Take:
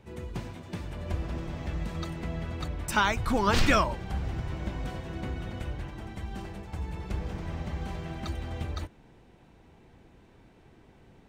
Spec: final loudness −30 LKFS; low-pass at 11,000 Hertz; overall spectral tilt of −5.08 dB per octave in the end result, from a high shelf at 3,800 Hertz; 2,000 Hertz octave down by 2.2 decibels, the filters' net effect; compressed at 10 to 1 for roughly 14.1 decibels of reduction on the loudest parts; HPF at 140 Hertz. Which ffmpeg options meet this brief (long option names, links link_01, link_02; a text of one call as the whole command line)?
ffmpeg -i in.wav -af "highpass=140,lowpass=11000,equalizer=frequency=2000:width_type=o:gain=-4,highshelf=frequency=3800:gain=4,acompressor=threshold=-35dB:ratio=10,volume=11dB" out.wav